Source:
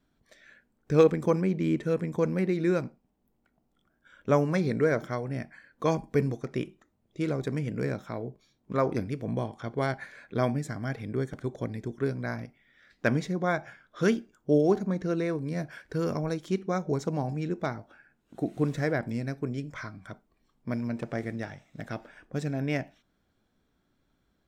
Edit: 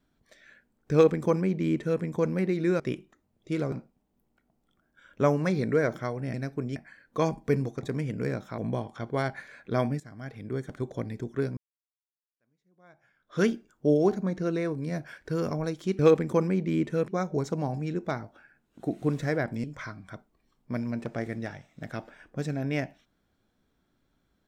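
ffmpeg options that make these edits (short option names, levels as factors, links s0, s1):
-filter_complex "[0:a]asplit=12[s0][s1][s2][s3][s4][s5][s6][s7][s8][s9][s10][s11];[s0]atrim=end=2.802[s12];[s1]atrim=start=6.488:end=7.412[s13];[s2]atrim=start=2.798:end=5.422[s14];[s3]atrim=start=19.188:end=19.612[s15];[s4]atrim=start=5.418:end=6.492[s16];[s5]atrim=start=7.408:end=8.162[s17];[s6]atrim=start=9.218:end=10.64,asetpts=PTS-STARTPTS,afade=t=out:st=1.418:d=0.004:c=hsin:silence=0.177828[s18];[s7]atrim=start=10.64:end=12.21,asetpts=PTS-STARTPTS,afade=t=in:d=0.79:silence=0.177828,afade=t=out:st=1.566:d=0.004:c=hsin[s19];[s8]atrim=start=12.21:end=16.632,asetpts=PTS-STARTPTS,afade=t=in:d=1.83:c=exp[s20];[s9]atrim=start=0.918:end=2.012[s21];[s10]atrim=start=16.628:end=19.192[s22];[s11]atrim=start=19.608[s23];[s12][s13]acrossfade=d=0.004:c1=hsin:c2=hsin[s24];[s24][s14]acrossfade=d=0.004:c1=hsin:c2=hsin[s25];[s25][s15]acrossfade=d=0.004:c1=hsin:c2=hsin[s26];[s26][s16]acrossfade=d=0.004:c1=hsin:c2=hsin[s27];[s27][s17]acrossfade=d=0.004:c1=hsin:c2=hsin[s28];[s18][s19][s20]concat=n=3:v=0:a=1[s29];[s28][s29]acrossfade=d=0.004:c1=hsin:c2=hsin[s30];[s30][s21]acrossfade=d=0.004:c1=hsin:c2=hsin[s31];[s31][s22]acrossfade=d=0.004:c1=hsin:c2=hsin[s32];[s32][s23]acrossfade=d=0.004:c1=hsin:c2=hsin"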